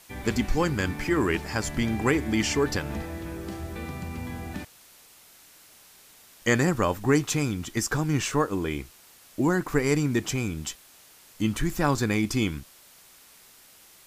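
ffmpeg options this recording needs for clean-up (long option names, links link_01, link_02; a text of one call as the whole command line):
ffmpeg -i in.wav -af "afwtdn=0.0025" out.wav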